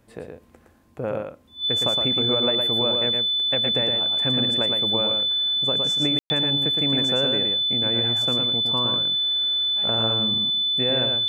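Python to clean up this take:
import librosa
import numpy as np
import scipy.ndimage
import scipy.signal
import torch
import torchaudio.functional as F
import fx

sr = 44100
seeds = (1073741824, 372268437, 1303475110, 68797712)

y = fx.notch(x, sr, hz=3500.0, q=30.0)
y = fx.fix_ambience(y, sr, seeds[0], print_start_s=0.47, print_end_s=0.97, start_s=6.19, end_s=6.3)
y = fx.fix_echo_inverse(y, sr, delay_ms=114, level_db=-4.5)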